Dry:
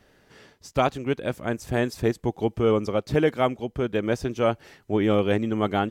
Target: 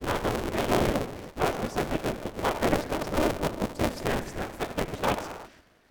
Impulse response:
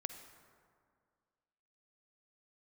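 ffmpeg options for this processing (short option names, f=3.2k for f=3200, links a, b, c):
-filter_complex "[0:a]areverse[a];[1:a]atrim=start_sample=2205,afade=t=out:st=0.4:d=0.01,atrim=end_sample=18081[b];[a][b]afir=irnorm=-1:irlink=0,afftfilt=real='hypot(re,im)*cos(2*PI*random(0))':imag='hypot(re,im)*sin(2*PI*random(1))':win_size=512:overlap=0.75,aeval=exprs='val(0)*sgn(sin(2*PI*150*n/s))':c=same,volume=3.5dB"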